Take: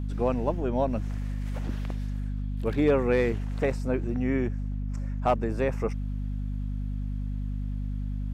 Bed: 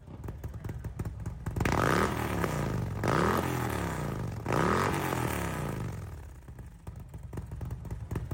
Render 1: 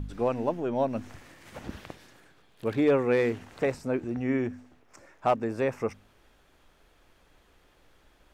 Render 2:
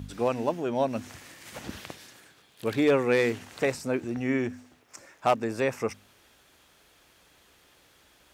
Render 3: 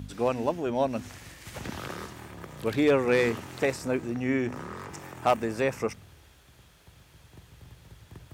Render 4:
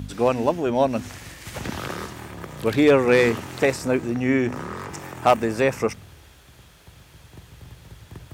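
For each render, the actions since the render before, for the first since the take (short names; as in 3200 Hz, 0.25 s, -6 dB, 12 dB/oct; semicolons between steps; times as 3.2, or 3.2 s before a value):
de-hum 50 Hz, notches 5
HPF 73 Hz; high shelf 2500 Hz +11 dB
add bed -12.5 dB
gain +6.5 dB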